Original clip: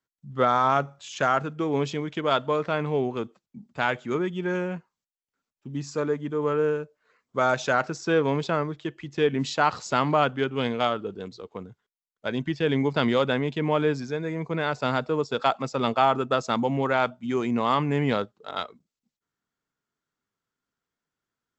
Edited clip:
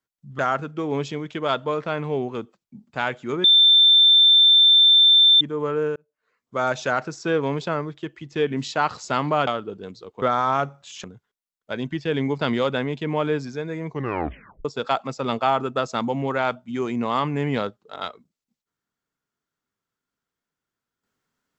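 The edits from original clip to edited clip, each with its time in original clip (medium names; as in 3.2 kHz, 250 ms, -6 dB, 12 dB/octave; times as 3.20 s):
0.39–1.21 s: move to 11.59 s
4.26–6.23 s: bleep 3.56 kHz -10.5 dBFS
6.78–7.50 s: fade in
10.29–10.84 s: delete
14.44 s: tape stop 0.76 s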